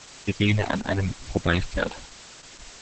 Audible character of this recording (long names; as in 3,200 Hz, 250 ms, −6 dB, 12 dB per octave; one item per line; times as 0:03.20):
phaser sweep stages 12, 0.93 Hz, lowest notch 110–1,300 Hz
a quantiser's noise floor 8 bits, dither triangular
Opus